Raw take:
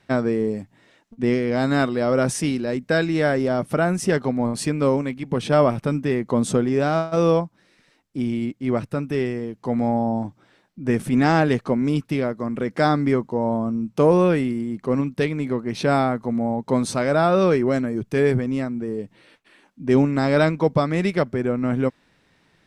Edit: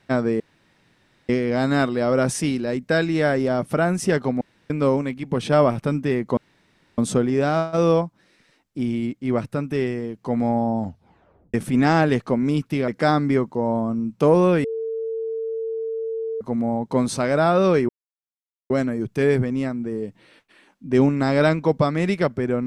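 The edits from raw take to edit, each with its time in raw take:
0.4–1.29 room tone
4.41–4.7 room tone
6.37 insert room tone 0.61 s
10.18 tape stop 0.75 s
12.27–12.65 cut
14.41–16.18 bleep 449 Hz -24 dBFS
17.66 insert silence 0.81 s

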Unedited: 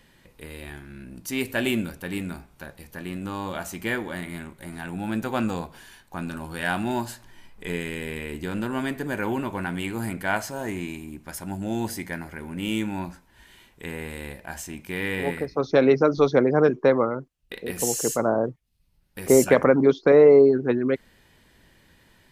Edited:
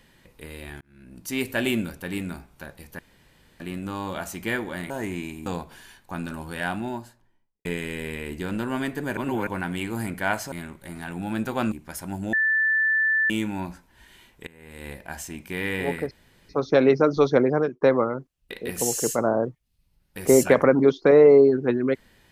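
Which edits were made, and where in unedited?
0.81–1.31 fade in
2.99 insert room tone 0.61 s
4.29–5.49 swap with 10.55–11.11
6.36–7.68 studio fade out
9.2–9.5 reverse
11.72–12.69 bleep 1760 Hz -18.5 dBFS
13.86–14.29 fade in quadratic, from -20.5 dB
15.5 insert room tone 0.38 s
16.49–16.82 fade out

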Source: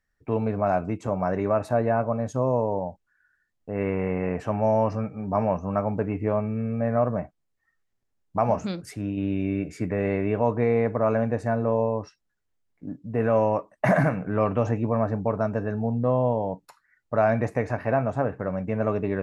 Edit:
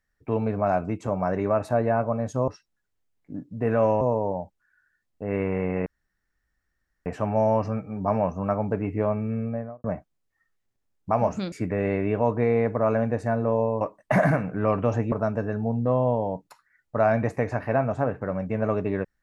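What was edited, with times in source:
4.33 insert room tone 1.20 s
6.62–7.11 studio fade out
8.79–9.72 cut
12.01–13.54 move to 2.48
14.85–15.3 cut

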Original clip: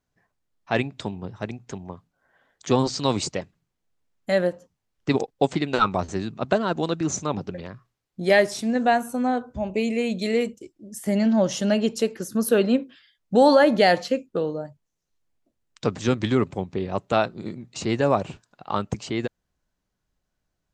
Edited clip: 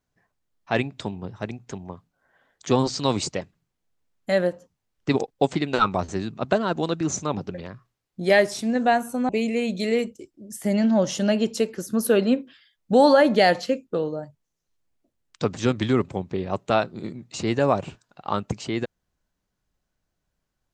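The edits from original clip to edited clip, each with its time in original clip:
9.29–9.71 cut

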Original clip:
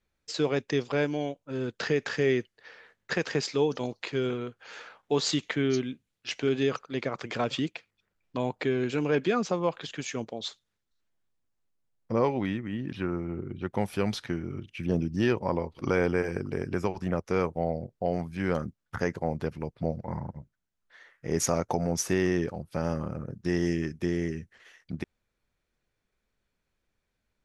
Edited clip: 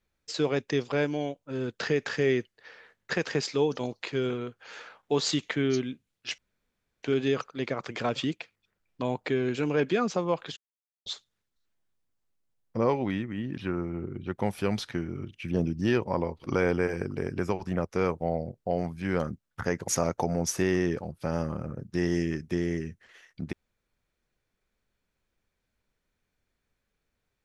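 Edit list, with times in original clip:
6.38 insert room tone 0.65 s
9.92–10.41 mute
19.23–21.39 cut

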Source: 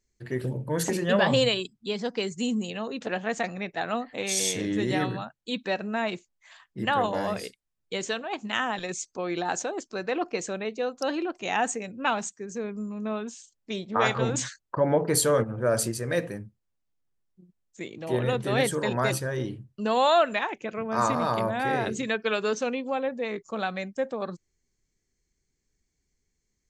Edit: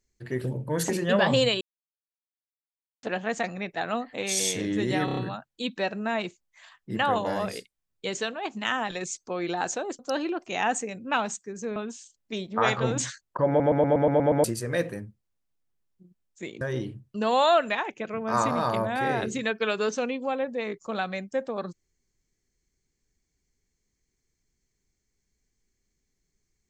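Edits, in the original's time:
1.61–3.03 mute
5.05 stutter 0.03 s, 5 plays
9.87–10.92 cut
12.69–13.14 cut
14.86 stutter in place 0.12 s, 8 plays
17.99–19.25 cut

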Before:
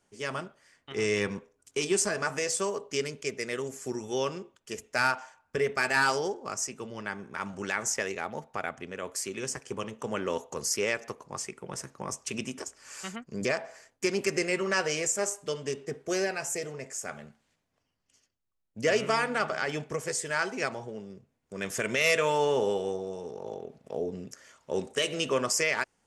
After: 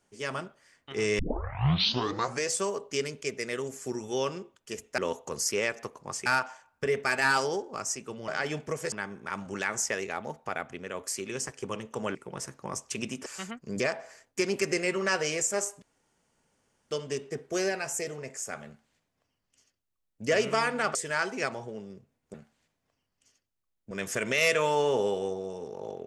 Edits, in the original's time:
1.19 tape start 1.29 s
10.23–11.51 move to 4.98
12.62–12.91 cut
15.47 insert room tone 1.09 s
17.22–18.79 copy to 21.54
19.51–20.15 move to 7

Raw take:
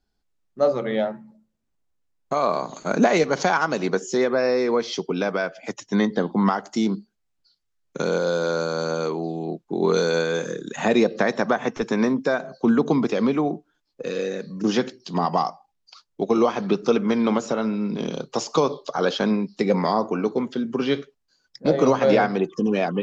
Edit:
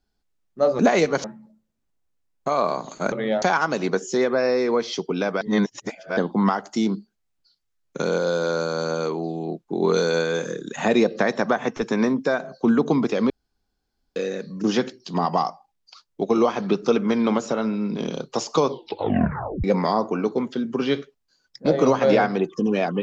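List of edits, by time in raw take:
0.79–1.09 swap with 2.97–3.42
5.41–6.17 reverse
13.3–14.16 room tone
18.68 tape stop 0.96 s

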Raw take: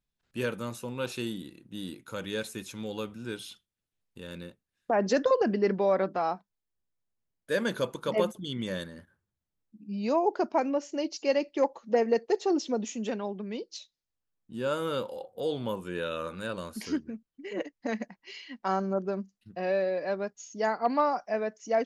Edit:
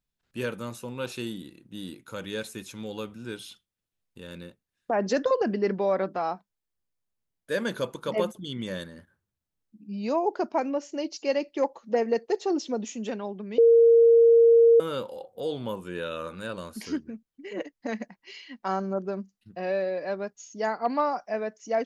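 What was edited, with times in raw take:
13.58–14.8 bleep 463 Hz -13 dBFS

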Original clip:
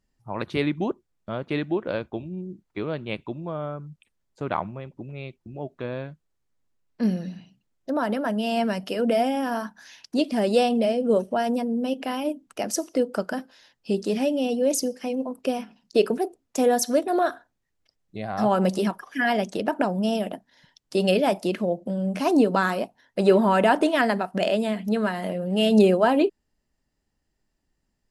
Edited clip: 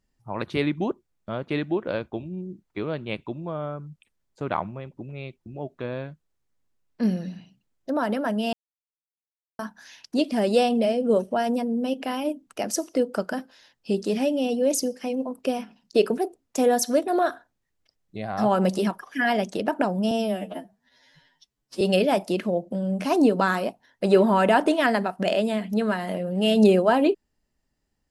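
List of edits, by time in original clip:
8.53–9.59 mute
20.11–20.96 stretch 2×

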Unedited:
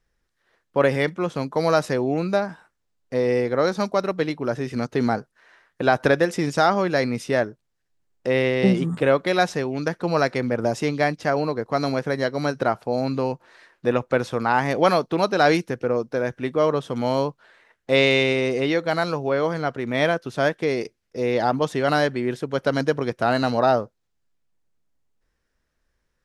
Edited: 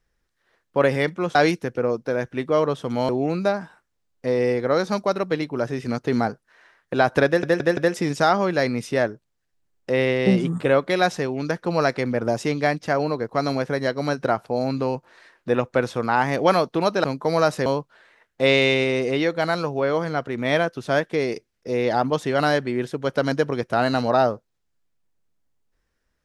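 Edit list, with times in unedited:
1.35–1.97 swap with 15.41–17.15
6.14 stutter 0.17 s, 4 plays

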